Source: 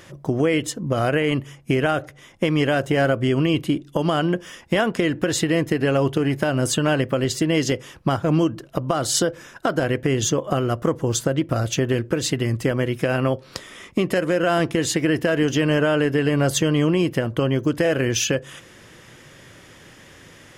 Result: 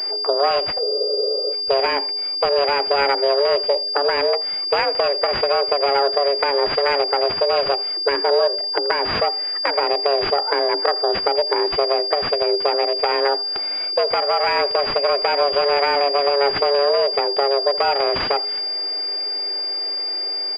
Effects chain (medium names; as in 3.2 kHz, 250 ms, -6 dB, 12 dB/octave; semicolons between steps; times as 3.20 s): self-modulated delay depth 0.47 ms; in parallel at +2.5 dB: compression, threshold -33 dBFS, peak gain reduction 16.5 dB; on the sum: frequency shift +280 Hz; on a send: delay 83 ms -20 dB; on the sum: spectral freeze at 0.85 s, 0.68 s; class-D stage that switches slowly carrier 4.8 kHz